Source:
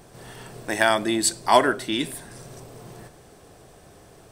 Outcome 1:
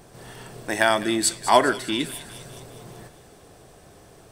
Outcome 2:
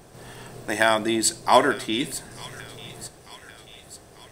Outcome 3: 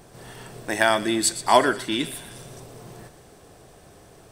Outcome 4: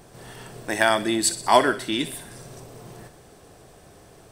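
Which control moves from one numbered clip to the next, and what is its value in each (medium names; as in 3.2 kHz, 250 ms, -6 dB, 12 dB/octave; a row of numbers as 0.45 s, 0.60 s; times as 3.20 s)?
feedback echo behind a high-pass, time: 202 ms, 891 ms, 120 ms, 62 ms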